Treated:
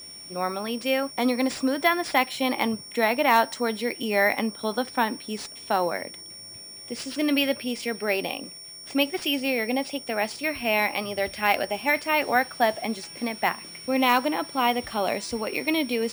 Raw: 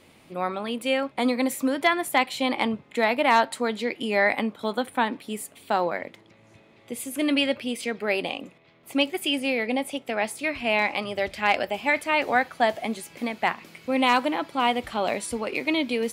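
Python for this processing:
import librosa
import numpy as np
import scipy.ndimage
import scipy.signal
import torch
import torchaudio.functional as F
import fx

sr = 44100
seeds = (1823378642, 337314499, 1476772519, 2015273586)

y = x + 10.0 ** (-38.0 / 20.0) * np.sin(2.0 * np.pi * 5500.0 * np.arange(len(x)) / sr)
y = np.repeat(y[::3], 3)[:len(y)]
y = fx.high_shelf(y, sr, hz=11000.0, db=-7.0)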